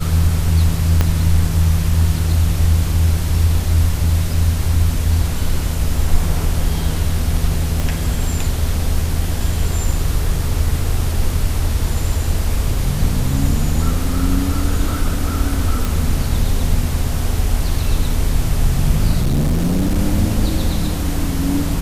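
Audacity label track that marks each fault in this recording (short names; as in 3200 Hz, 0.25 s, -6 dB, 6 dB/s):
1.010000	1.010000	pop -2 dBFS
7.800000	7.800000	pop
15.850000	15.850000	pop
19.200000	19.980000	clipped -12.5 dBFS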